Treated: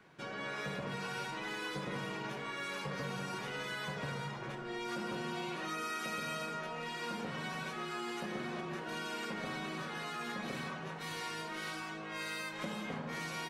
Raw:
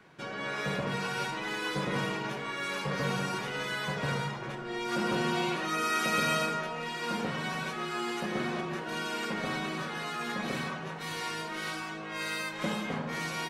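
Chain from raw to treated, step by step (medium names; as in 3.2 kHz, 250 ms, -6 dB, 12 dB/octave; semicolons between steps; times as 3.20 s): compression, threshold -32 dBFS, peak gain reduction 8 dB; trim -4 dB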